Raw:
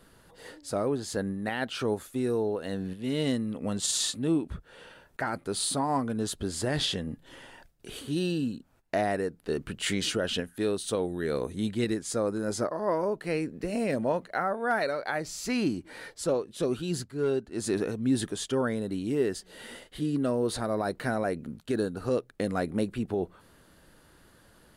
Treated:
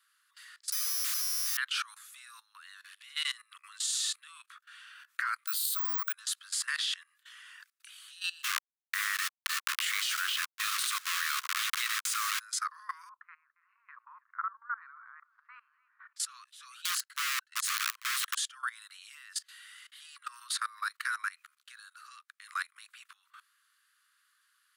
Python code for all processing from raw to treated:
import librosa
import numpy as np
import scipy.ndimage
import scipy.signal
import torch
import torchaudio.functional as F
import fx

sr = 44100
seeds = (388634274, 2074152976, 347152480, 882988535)

y = fx.chain(x, sr, fx.schmitt(flips_db=-43.0),
    fx.resample_bad(factor=8, down='none', up='zero_stuff'), at=(0.72, 1.57))
y = fx.chain(y, sr, fx.highpass(hz=570.0, slope=12),
    fx.high_shelf(hz=2300.0, db=7.0),
    fx.resample_bad(factor=2, down='filtered', up='zero_stuff'), at=(5.47, 6.13))
y = fx.chain(y, sr, fx.delta_hold(step_db=-32.5),
    fx.highpass(hz=270.0, slope=12),
    fx.env_flatten(amount_pct=70), at=(8.43, 12.4))
y = fx.chain(y, sr, fx.lowpass(hz=1100.0, slope=24),
    fx.low_shelf(hz=380.0, db=3.5),
    fx.echo_feedback(ms=287, feedback_pct=42, wet_db=-17.5), at=(13.09, 16.16))
y = fx.chain(y, sr, fx.notch_comb(f0_hz=1200.0),
    fx.overflow_wrap(gain_db=27.5), at=(16.85, 18.39))
y = scipy.signal.sosfilt(scipy.signal.butter(16, 1100.0, 'highpass', fs=sr, output='sos'), y)
y = fx.level_steps(y, sr, step_db=20)
y = F.gain(torch.from_numpy(y), 8.0).numpy()